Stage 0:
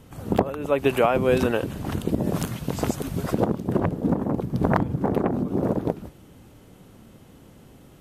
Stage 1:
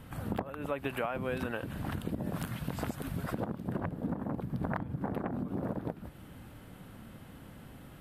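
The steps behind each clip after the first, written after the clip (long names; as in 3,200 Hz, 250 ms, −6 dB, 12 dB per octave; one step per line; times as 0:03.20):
graphic EQ with 15 bands 400 Hz −6 dB, 1,600 Hz +5 dB, 6,300 Hz −9 dB
downward compressor 3 to 1, threshold −35 dBFS, peak gain reduction 15.5 dB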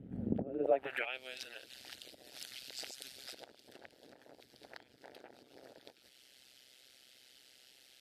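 phaser with its sweep stopped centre 440 Hz, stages 4
amplitude modulation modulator 130 Hz, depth 90%
band-pass filter sweep 200 Hz → 4,900 Hz, 0:00.42–0:01.22
level +15.5 dB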